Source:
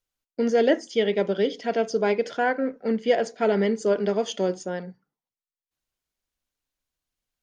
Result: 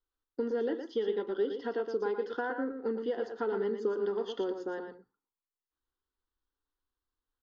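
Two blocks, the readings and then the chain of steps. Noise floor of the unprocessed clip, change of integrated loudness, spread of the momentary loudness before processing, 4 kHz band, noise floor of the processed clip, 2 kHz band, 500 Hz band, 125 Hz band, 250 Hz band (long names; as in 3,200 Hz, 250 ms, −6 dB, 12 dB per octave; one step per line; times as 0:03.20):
below −85 dBFS, −9.5 dB, 7 LU, −14.0 dB, below −85 dBFS, −11.5 dB, −8.5 dB, can't be measured, −10.5 dB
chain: low-pass filter 3,700 Hz 24 dB per octave
downward compressor, threshold −26 dBFS, peak gain reduction 11 dB
phaser with its sweep stopped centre 630 Hz, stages 6
single-tap delay 116 ms −7 dB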